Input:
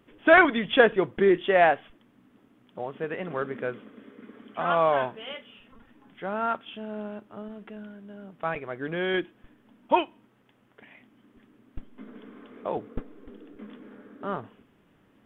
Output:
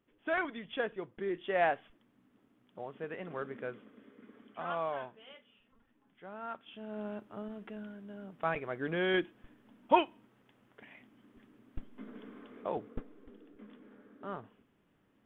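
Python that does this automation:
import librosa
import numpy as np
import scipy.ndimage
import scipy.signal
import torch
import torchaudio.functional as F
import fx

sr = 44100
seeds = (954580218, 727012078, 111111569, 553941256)

y = fx.gain(x, sr, db=fx.line((1.23, -16.5), (1.64, -9.0), (4.38, -9.0), (5.11, -15.5), (6.41, -15.5), (7.11, -3.0), (12.26, -3.0), (13.48, -9.5)))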